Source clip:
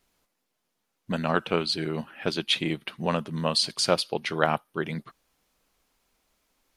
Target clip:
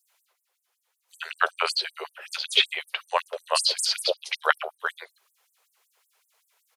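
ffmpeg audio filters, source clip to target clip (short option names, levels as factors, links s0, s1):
-filter_complex "[0:a]acrossover=split=510|5100[s0][s1][s2];[s1]adelay=70[s3];[s0]adelay=190[s4];[s4][s3][s2]amix=inputs=3:normalize=0,afftfilt=real='re*gte(b*sr/1024,350*pow(7800/350,0.5+0.5*sin(2*PI*5.3*pts/sr)))':imag='im*gte(b*sr/1024,350*pow(7800/350,0.5+0.5*sin(2*PI*5.3*pts/sr)))':win_size=1024:overlap=0.75,volume=2.11"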